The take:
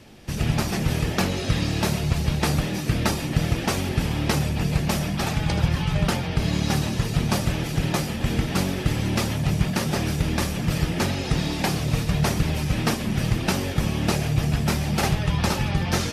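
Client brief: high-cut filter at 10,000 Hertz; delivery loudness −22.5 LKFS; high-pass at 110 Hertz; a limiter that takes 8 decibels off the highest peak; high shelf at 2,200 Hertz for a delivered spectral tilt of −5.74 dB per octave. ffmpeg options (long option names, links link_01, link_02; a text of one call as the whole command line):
ffmpeg -i in.wav -af "highpass=110,lowpass=10000,highshelf=frequency=2200:gain=-5,volume=5.5dB,alimiter=limit=-12dB:level=0:latency=1" out.wav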